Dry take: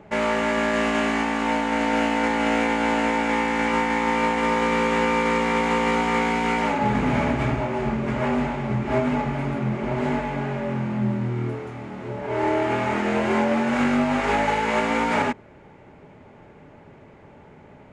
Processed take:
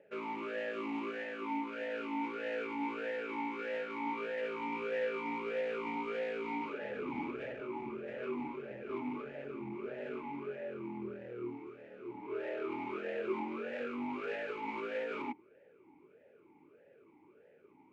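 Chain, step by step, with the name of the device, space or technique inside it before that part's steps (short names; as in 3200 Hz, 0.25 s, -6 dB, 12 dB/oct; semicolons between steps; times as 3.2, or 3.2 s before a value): talk box (tube stage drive 22 dB, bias 0.65; vowel sweep e-u 1.6 Hz)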